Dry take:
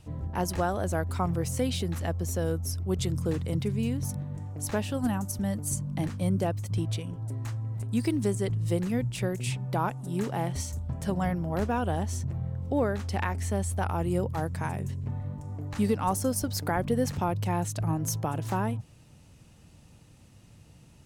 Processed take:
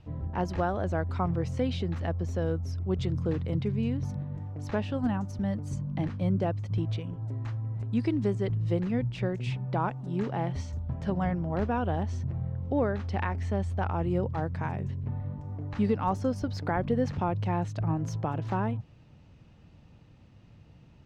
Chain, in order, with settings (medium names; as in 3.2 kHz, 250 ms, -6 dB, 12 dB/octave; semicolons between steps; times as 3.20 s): distance through air 210 m